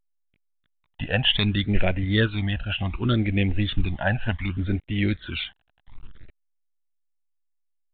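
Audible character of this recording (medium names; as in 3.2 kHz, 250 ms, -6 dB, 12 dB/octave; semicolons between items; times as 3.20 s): a quantiser's noise floor 8-bit, dither none; phasing stages 12, 0.66 Hz, lowest notch 360–1200 Hz; A-law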